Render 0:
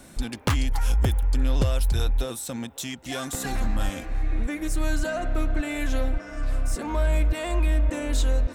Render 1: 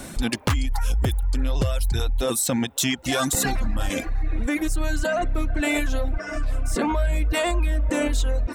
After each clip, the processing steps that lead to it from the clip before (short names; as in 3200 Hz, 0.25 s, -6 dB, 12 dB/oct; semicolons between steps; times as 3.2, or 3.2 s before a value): reverb removal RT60 0.87 s; in parallel at +1.5 dB: negative-ratio compressor -33 dBFS, ratio -1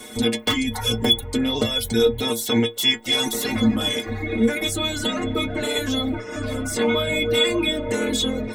spectral limiter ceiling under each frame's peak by 18 dB; metallic resonator 110 Hz, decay 0.26 s, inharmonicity 0.008; small resonant body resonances 260/430/2100/3400 Hz, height 17 dB, ringing for 60 ms; gain +4 dB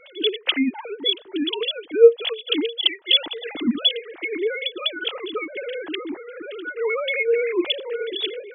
sine-wave speech; gain -1 dB